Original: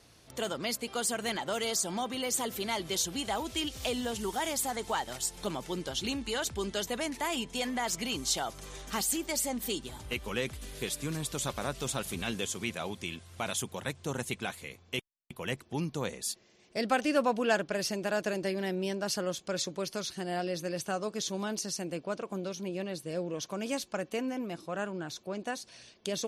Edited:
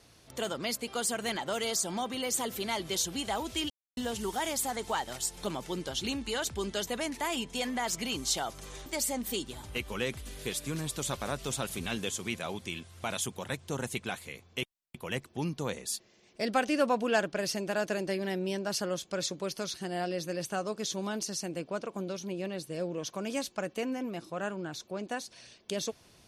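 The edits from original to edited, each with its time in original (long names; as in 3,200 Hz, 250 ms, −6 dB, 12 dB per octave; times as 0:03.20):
0:03.70–0:03.97: silence
0:08.86–0:09.22: remove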